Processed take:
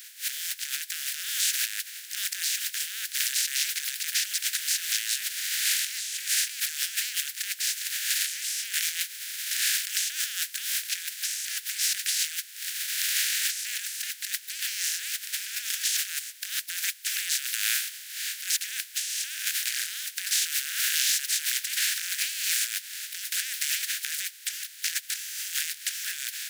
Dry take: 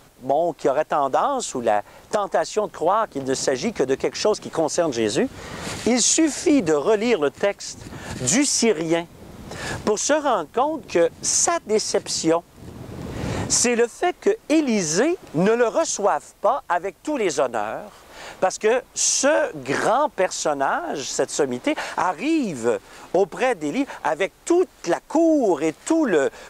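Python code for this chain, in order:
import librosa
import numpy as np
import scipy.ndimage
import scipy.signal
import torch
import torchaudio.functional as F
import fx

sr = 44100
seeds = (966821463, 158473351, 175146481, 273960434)

y = fx.spec_flatten(x, sr, power=0.23)
y = fx.over_compress(y, sr, threshold_db=-29.0, ratio=-1.0)
y = scipy.signal.sosfilt(scipy.signal.ellip(4, 1.0, 40, 1600.0, 'highpass', fs=sr, output='sos'), y)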